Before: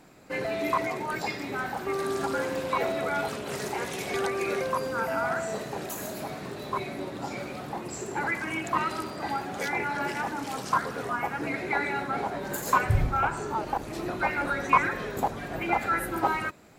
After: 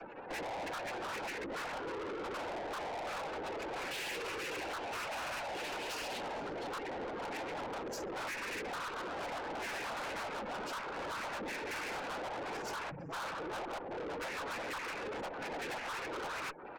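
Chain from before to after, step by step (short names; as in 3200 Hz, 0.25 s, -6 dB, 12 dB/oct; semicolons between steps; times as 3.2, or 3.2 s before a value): noise vocoder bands 8; 3.91–6.21 bell 3300 Hz +11 dB 2 oct; compressor 12:1, threshold -37 dBFS, peak gain reduction 22 dB; spectral gate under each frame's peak -15 dB strong; BPF 390–4200 Hz; echo 0.457 s -23.5 dB; tube stage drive 52 dB, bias 0.45; gain +13.5 dB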